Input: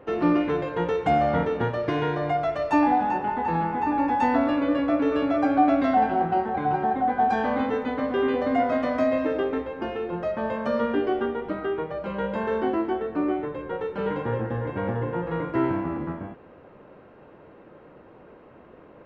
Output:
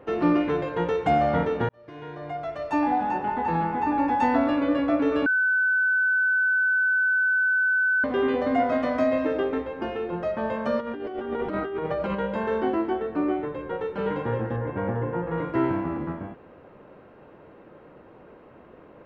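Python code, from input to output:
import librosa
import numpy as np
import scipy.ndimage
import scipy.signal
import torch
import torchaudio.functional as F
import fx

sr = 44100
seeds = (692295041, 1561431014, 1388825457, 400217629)

y = fx.over_compress(x, sr, threshold_db=-32.0, ratio=-1.0, at=(10.79, 12.14), fade=0.02)
y = fx.lowpass(y, sr, hz=2300.0, slope=12, at=(14.56, 15.38))
y = fx.edit(y, sr, fx.fade_in_span(start_s=1.69, length_s=1.68),
    fx.bleep(start_s=5.26, length_s=2.78, hz=1510.0, db=-19.0), tone=tone)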